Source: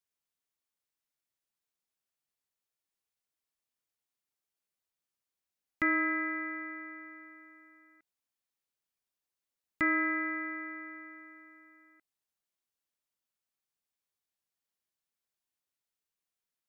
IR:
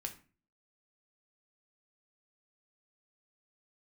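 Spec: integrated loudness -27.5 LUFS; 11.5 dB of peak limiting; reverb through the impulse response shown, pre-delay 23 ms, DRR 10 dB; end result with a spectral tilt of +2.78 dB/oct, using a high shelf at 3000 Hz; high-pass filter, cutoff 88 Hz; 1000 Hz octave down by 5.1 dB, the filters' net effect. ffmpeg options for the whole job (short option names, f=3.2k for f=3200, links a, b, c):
-filter_complex "[0:a]highpass=88,equalizer=f=1k:t=o:g=-6,highshelf=f=3k:g=-7.5,alimiter=level_in=8dB:limit=-24dB:level=0:latency=1,volume=-8dB,asplit=2[a][b];[1:a]atrim=start_sample=2205,adelay=23[c];[b][c]afir=irnorm=-1:irlink=0,volume=-8.5dB[d];[a][d]amix=inputs=2:normalize=0,volume=13.5dB"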